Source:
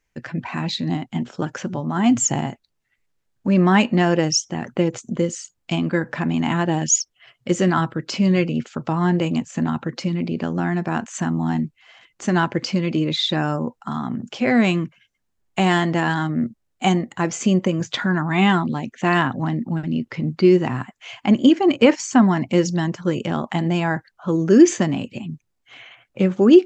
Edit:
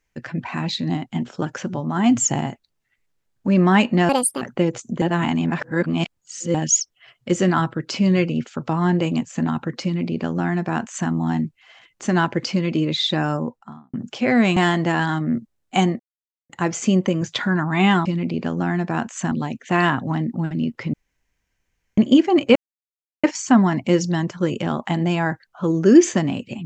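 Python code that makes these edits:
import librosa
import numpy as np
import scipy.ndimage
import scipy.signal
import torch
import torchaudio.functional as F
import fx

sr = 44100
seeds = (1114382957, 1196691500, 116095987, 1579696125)

y = fx.studio_fade_out(x, sr, start_s=13.54, length_s=0.59)
y = fx.edit(y, sr, fx.speed_span(start_s=4.09, length_s=0.52, speed=1.6),
    fx.reverse_span(start_s=5.21, length_s=1.53),
    fx.duplicate(start_s=10.03, length_s=1.26, to_s=18.64),
    fx.cut(start_s=14.76, length_s=0.89),
    fx.insert_silence(at_s=17.08, length_s=0.5),
    fx.room_tone_fill(start_s=20.26, length_s=1.04),
    fx.insert_silence(at_s=21.88, length_s=0.68), tone=tone)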